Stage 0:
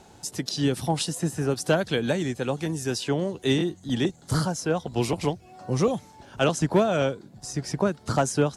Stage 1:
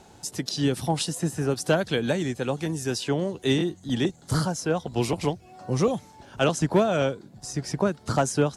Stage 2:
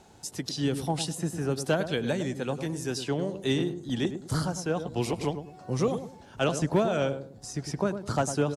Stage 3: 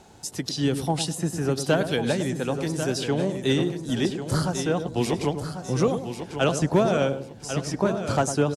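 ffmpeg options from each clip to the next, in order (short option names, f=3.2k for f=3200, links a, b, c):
-af anull
-filter_complex "[0:a]asplit=2[a][b];[b]adelay=103,lowpass=f=830:p=1,volume=-8dB,asplit=2[c][d];[d]adelay=103,lowpass=f=830:p=1,volume=0.33,asplit=2[e][f];[f]adelay=103,lowpass=f=830:p=1,volume=0.33,asplit=2[g][h];[h]adelay=103,lowpass=f=830:p=1,volume=0.33[i];[a][c][e][g][i]amix=inputs=5:normalize=0,volume=-4dB"
-af "aecho=1:1:1094|2188|3282:0.355|0.0852|0.0204,volume=4dB"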